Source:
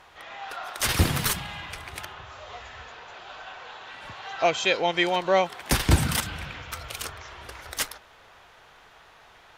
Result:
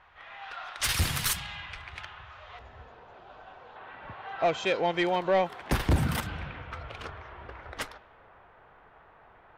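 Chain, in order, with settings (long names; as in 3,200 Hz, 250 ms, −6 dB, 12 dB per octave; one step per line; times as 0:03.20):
low-pass that shuts in the quiet parts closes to 1,800 Hz, open at −22 dBFS
parametric band 330 Hz −12 dB 2.7 octaves, from 0:02.59 2,200 Hz, from 0:03.76 7,600 Hz
soft clipping −17 dBFS, distortion −13 dB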